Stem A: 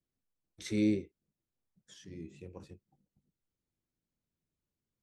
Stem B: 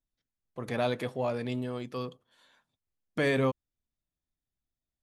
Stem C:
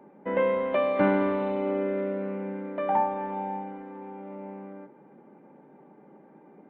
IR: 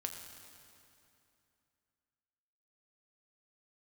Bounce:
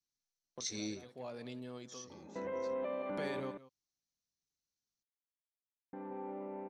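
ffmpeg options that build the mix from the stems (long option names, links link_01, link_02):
-filter_complex "[0:a]lowpass=frequency=6000:width_type=q:width=7,tiltshelf=frequency=970:gain=-3.5,volume=-10.5dB,asplit=2[link_01][link_02];[1:a]highpass=140,agate=range=-23dB:threshold=-58dB:ratio=16:detection=peak,acompressor=threshold=-47dB:ratio=2,volume=-3dB,asplit=2[link_03][link_04];[link_04]volume=-17dB[link_05];[2:a]highshelf=frequency=3500:gain=-11.5,acompressor=threshold=-42dB:ratio=1.5,alimiter=level_in=7.5dB:limit=-24dB:level=0:latency=1,volume=-7.5dB,adelay=2100,volume=-2dB,asplit=3[link_06][link_07][link_08];[link_06]atrim=end=3.4,asetpts=PTS-STARTPTS,afade=type=out:start_time=3.396:duration=0.004:curve=hsin[link_09];[link_07]atrim=start=3.4:end=5.93,asetpts=PTS-STARTPTS,volume=0[link_10];[link_08]atrim=start=5.93,asetpts=PTS-STARTPTS,afade=type=in:duration=0.004:curve=hsin[link_11];[link_09][link_10][link_11]concat=n=3:v=0:a=1,asplit=2[link_12][link_13];[link_13]volume=-6dB[link_14];[link_02]apad=whole_len=221763[link_15];[link_03][link_15]sidechaincompress=threshold=-55dB:ratio=5:attack=12:release=277[link_16];[link_05][link_14]amix=inputs=2:normalize=0,aecho=0:1:176:1[link_17];[link_01][link_16][link_12][link_17]amix=inputs=4:normalize=0,equalizer=frequency=4200:width_type=o:width=0.39:gain=8.5"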